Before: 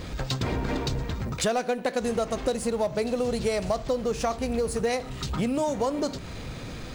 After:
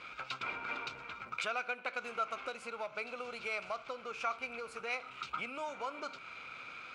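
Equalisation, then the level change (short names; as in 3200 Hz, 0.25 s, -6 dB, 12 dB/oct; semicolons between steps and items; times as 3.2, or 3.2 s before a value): double band-pass 1800 Hz, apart 0.75 oct; +4.0 dB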